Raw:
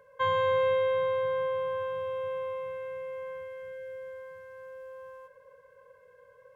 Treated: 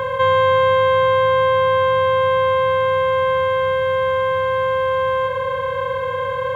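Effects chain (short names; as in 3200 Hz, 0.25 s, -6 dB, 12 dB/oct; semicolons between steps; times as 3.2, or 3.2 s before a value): per-bin compression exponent 0.2; gain +9 dB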